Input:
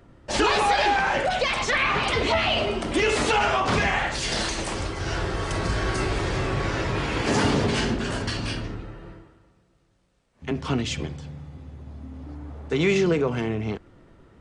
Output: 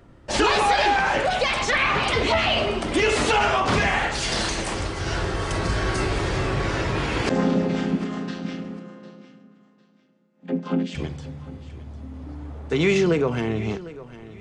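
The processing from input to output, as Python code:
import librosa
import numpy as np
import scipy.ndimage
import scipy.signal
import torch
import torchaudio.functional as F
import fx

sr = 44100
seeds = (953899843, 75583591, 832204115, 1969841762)

y = fx.chord_vocoder(x, sr, chord='minor triad', root=53, at=(7.29, 10.95))
y = fx.echo_feedback(y, sr, ms=752, feedback_pct=24, wet_db=-17)
y = y * 10.0 ** (1.5 / 20.0)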